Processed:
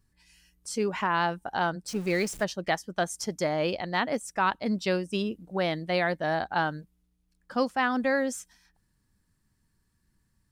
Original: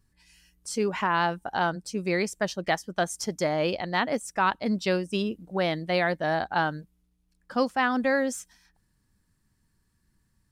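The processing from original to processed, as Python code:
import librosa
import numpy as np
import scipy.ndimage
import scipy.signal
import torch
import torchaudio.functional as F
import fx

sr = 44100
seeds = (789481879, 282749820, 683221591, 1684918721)

y = fx.zero_step(x, sr, step_db=-37.0, at=(1.88, 2.44))
y = y * librosa.db_to_amplitude(-1.5)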